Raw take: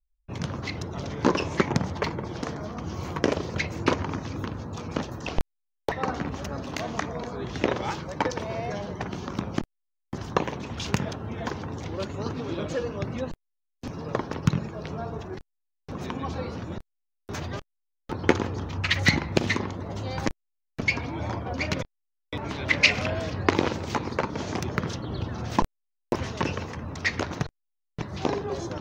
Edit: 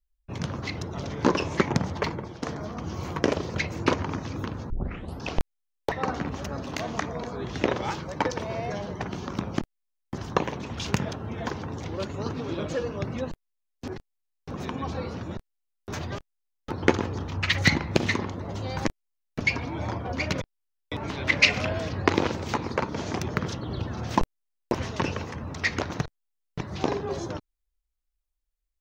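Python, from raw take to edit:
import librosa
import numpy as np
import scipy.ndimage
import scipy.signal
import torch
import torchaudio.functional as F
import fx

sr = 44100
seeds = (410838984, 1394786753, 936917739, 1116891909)

y = fx.edit(x, sr, fx.fade_out_to(start_s=2.11, length_s=0.31, floor_db=-11.0),
    fx.tape_start(start_s=4.7, length_s=0.58),
    fx.cut(start_s=13.88, length_s=1.41), tone=tone)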